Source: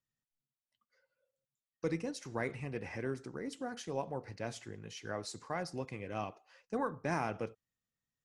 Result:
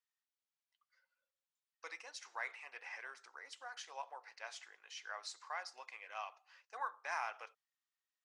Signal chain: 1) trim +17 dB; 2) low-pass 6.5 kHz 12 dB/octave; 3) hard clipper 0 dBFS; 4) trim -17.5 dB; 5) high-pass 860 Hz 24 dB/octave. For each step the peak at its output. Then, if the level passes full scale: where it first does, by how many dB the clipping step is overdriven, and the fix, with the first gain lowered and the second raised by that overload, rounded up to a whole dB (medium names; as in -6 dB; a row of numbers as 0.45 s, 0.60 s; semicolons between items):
-4.0 dBFS, -4.0 dBFS, -4.0 dBFS, -21.5 dBFS, -27.0 dBFS; nothing clips